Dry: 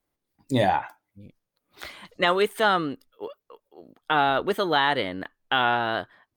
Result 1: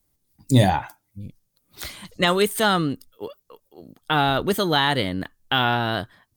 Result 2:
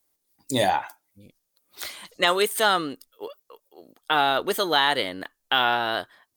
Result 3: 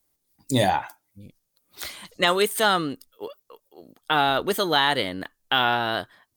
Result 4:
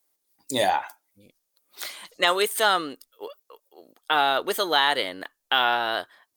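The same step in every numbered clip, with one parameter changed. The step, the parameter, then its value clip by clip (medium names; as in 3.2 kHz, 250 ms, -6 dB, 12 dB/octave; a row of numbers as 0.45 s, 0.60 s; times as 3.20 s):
tone controls, bass: +13 dB, -6 dB, +2 dB, -15 dB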